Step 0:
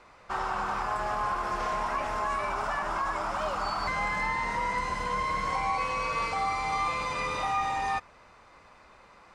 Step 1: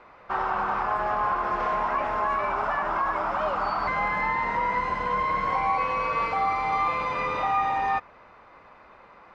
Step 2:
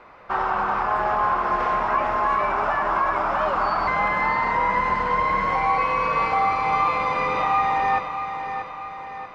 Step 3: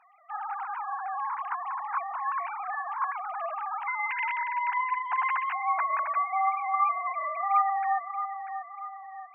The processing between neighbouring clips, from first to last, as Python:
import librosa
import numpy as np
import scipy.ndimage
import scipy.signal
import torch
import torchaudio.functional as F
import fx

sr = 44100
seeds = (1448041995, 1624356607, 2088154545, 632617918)

y1 = scipy.signal.sosfilt(scipy.signal.bessel(2, 2000.0, 'lowpass', norm='mag', fs=sr, output='sos'), x)
y1 = fx.low_shelf(y1, sr, hz=150.0, db=-8.0)
y1 = F.gain(torch.from_numpy(y1), 5.5).numpy()
y2 = fx.echo_feedback(y1, sr, ms=636, feedback_pct=51, wet_db=-8.5)
y2 = F.gain(torch.from_numpy(y2), 3.5).numpy()
y3 = fx.sine_speech(y2, sr)
y3 = fx.highpass(y3, sr, hz=580.0, slope=6)
y3 = F.gain(torch.from_numpy(y3), -6.5).numpy()